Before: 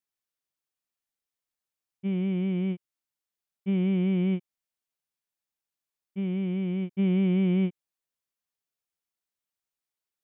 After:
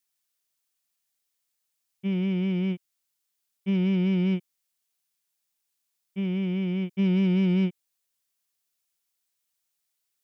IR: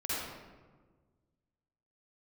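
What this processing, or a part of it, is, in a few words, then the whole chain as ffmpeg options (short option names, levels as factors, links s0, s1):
one-band saturation: -filter_complex "[0:a]acrossover=split=330|2900[s0][s1][s2];[s1]asoftclip=type=tanh:threshold=0.0141[s3];[s0][s3][s2]amix=inputs=3:normalize=0,highshelf=f=2400:g=10.5,volume=1.19"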